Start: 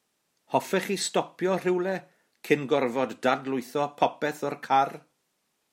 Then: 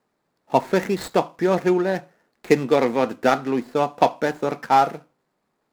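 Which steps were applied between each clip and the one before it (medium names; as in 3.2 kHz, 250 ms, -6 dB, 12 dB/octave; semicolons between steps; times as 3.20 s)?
median filter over 15 samples; trim +6.5 dB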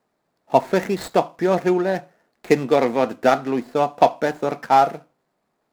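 peaking EQ 670 Hz +5 dB 0.32 oct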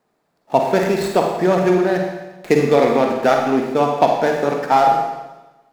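in parallel at -0.5 dB: peak limiter -9 dBFS, peak gain reduction 7.5 dB; on the sum: Schroeder reverb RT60 1.1 s, DRR 1.5 dB; trim -3.5 dB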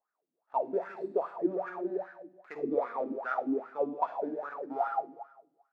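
wah-wah 2.5 Hz 270–1500 Hz, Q 9.3; trim -5 dB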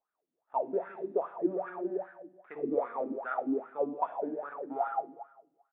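treble shelf 2.6 kHz -10 dB; resampled via 8 kHz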